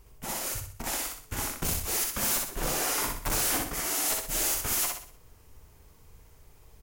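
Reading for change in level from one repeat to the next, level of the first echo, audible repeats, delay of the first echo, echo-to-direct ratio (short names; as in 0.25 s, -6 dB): -7.5 dB, -3.0 dB, 5, 62 ms, -2.0 dB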